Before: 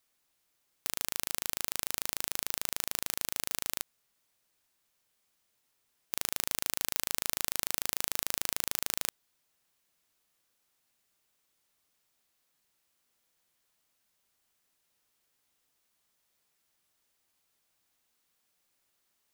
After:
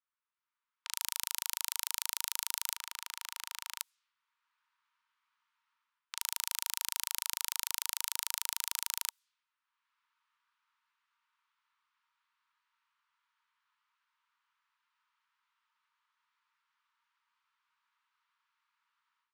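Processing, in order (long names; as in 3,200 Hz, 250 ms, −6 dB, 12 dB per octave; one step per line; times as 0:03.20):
low-pass that shuts in the quiet parts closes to 1,300 Hz, open at −48 dBFS
high-shelf EQ 4,300 Hz +4 dB, from 0:02.76 −7.5 dB, from 0:03.79 +3.5 dB
automatic gain control gain up to 15 dB
Chebyshev high-pass with heavy ripple 910 Hz, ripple 3 dB
level −6 dB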